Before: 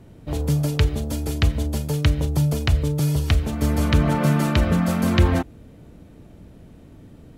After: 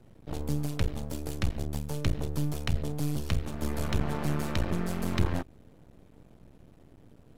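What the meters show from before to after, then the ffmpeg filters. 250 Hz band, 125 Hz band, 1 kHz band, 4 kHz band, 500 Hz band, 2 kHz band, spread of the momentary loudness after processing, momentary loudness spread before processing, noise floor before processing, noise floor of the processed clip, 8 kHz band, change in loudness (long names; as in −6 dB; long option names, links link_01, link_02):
−11.0 dB, −11.5 dB, −10.0 dB, −10.5 dB, −10.0 dB, −10.5 dB, 6 LU, 7 LU, −47 dBFS, −57 dBFS, −9.0 dB, −11.0 dB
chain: -filter_complex "[0:a]acrossover=split=180|3000[link_01][link_02][link_03];[link_02]acompressor=threshold=-21dB:ratio=6[link_04];[link_01][link_04][link_03]amix=inputs=3:normalize=0,aeval=exprs='max(val(0),0)':channel_layout=same,volume=-6dB"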